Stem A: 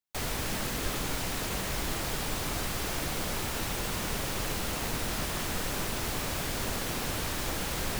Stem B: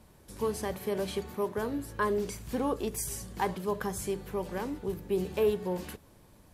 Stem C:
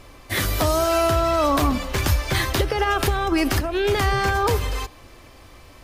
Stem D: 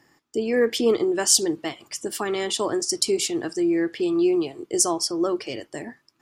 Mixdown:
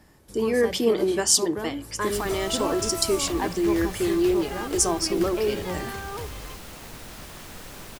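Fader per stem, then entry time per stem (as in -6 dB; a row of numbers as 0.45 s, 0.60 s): -8.5 dB, +0.5 dB, -14.5 dB, -1.5 dB; 2.00 s, 0.00 s, 1.70 s, 0.00 s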